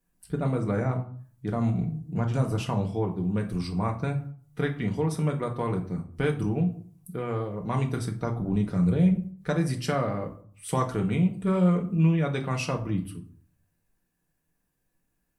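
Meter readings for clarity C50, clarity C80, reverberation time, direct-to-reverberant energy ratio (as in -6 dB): 12.0 dB, 16.5 dB, 0.50 s, 1.0 dB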